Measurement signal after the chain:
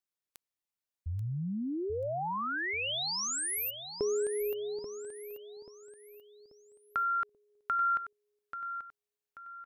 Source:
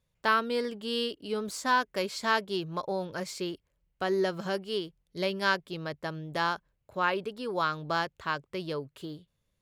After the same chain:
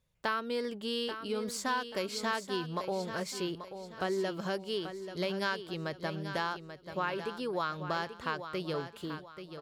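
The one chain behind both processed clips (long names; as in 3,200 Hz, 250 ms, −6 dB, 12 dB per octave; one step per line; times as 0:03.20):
downward compressor 3 to 1, threshold −31 dBFS
on a send: repeating echo 835 ms, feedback 37%, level −10 dB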